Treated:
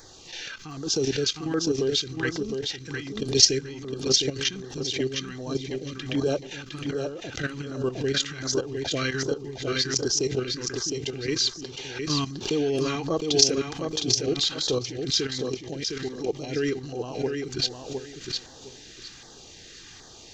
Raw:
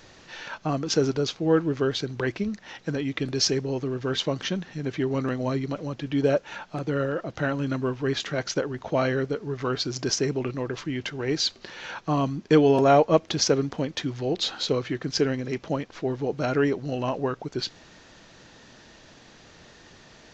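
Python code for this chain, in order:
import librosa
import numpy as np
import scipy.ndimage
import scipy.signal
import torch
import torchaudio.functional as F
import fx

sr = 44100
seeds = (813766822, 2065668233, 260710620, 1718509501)

y = fx.high_shelf(x, sr, hz=2700.0, db=11.0)
y = y + 0.4 * np.pad(y, (int(2.5 * sr / 1000.0), 0))[:len(y)]
y = fx.dynamic_eq(y, sr, hz=840.0, q=1.6, threshold_db=-36.0, ratio=4.0, max_db=-3)
y = fx.level_steps(y, sr, step_db=12)
y = fx.filter_lfo_notch(y, sr, shape='saw_down', hz=1.3, low_hz=470.0, high_hz=2900.0, q=0.73)
y = fx.echo_feedback(y, sr, ms=710, feedback_pct=22, wet_db=-5.0)
y = fx.pre_swell(y, sr, db_per_s=120.0)
y = y * librosa.db_to_amplitude(1.0)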